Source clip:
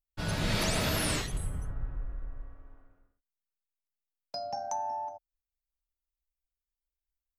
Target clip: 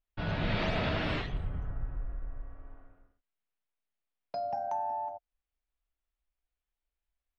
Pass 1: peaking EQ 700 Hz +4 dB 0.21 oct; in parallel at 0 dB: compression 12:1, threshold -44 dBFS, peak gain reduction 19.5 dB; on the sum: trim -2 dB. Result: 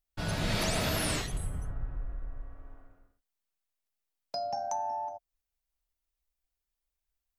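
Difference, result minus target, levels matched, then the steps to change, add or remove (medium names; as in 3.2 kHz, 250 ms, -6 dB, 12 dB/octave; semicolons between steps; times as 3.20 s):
4 kHz band +3.5 dB
add first: low-pass 3.4 kHz 24 dB/octave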